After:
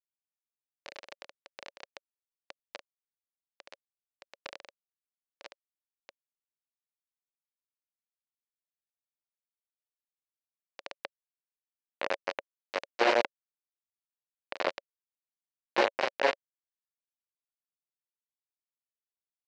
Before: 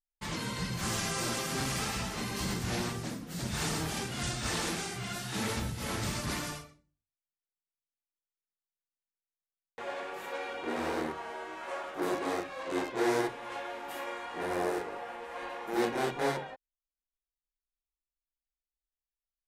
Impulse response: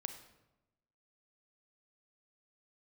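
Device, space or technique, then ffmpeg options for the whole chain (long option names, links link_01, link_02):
hand-held game console: -af "acrusher=bits=3:mix=0:aa=0.000001,highpass=430,equalizer=frequency=560:width_type=q:width=4:gain=10,equalizer=frequency=1300:width_type=q:width=4:gain=-4,equalizer=frequency=3400:width_type=q:width=4:gain=-6,lowpass=frequency=4200:width=0.5412,lowpass=frequency=4200:width=1.3066,volume=4dB"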